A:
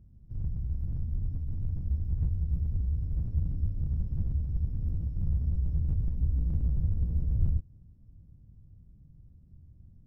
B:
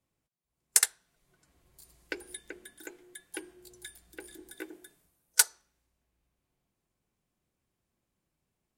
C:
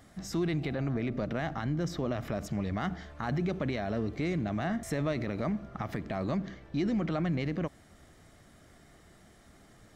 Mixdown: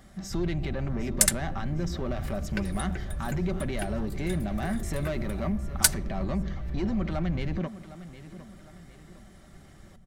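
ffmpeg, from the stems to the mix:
ffmpeg -i stem1.wav -i stem2.wav -i stem3.wav -filter_complex "[0:a]alimiter=level_in=2dB:limit=-24dB:level=0:latency=1:release=175,volume=-2dB,volume=-0.5dB[link_01];[1:a]adelay=450,volume=1dB[link_02];[2:a]asoftclip=type=tanh:threshold=-27dB,volume=1.5dB,asplit=2[link_03][link_04];[link_04]volume=-14.5dB,aecho=0:1:758|1516|2274|3032|3790|4548:1|0.42|0.176|0.0741|0.0311|0.0131[link_05];[link_01][link_02][link_03][link_05]amix=inputs=4:normalize=0,bandreject=frequency=460:width=14,aecho=1:1:5.2:0.38" out.wav

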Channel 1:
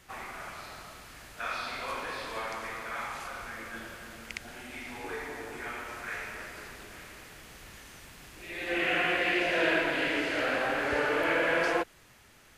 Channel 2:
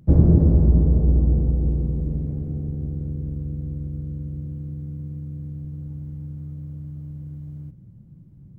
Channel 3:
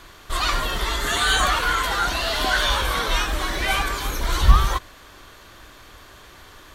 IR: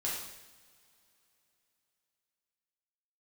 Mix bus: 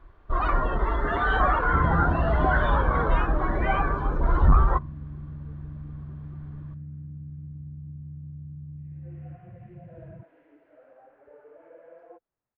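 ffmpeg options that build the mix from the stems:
-filter_complex "[0:a]adynamicequalizer=threshold=0.00708:dfrequency=730:dqfactor=1:tfrequency=730:tqfactor=1:attack=5:release=100:ratio=0.375:range=2:mode=boostabove:tftype=bell,adelay=350,volume=-18.5dB[link_01];[1:a]acompressor=mode=upward:threshold=-21dB:ratio=2.5,adelay=1650,volume=-10.5dB[link_02];[2:a]asoftclip=type=hard:threshold=-13.5dB,volume=2dB[link_03];[link_01][link_02][link_03]amix=inputs=3:normalize=0,lowpass=1200,afftdn=noise_reduction=13:noise_floor=-34"

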